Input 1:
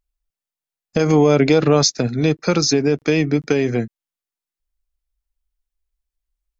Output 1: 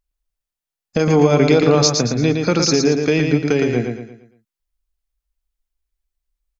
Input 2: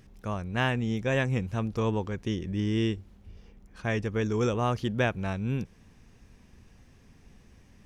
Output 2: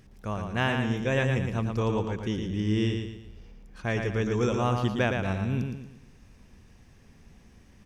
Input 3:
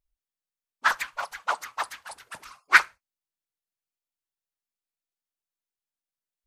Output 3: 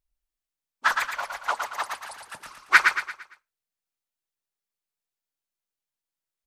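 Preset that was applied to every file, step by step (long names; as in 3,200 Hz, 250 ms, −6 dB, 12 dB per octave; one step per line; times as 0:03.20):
repeating echo 114 ms, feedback 40%, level −5 dB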